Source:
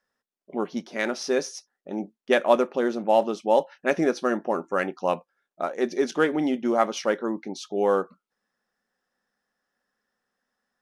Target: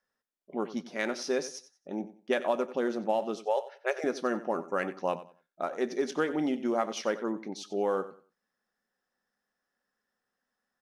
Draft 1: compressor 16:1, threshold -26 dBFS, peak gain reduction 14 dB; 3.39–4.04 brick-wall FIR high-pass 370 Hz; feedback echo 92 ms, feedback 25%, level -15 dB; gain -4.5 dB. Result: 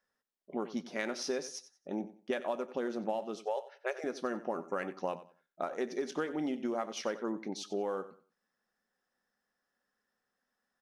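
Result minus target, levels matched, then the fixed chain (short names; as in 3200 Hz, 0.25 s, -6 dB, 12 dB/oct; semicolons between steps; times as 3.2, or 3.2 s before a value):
compressor: peak gain reduction +7 dB
compressor 16:1, threshold -18.5 dBFS, peak gain reduction 7 dB; 3.39–4.04 brick-wall FIR high-pass 370 Hz; feedback echo 92 ms, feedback 25%, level -15 dB; gain -4.5 dB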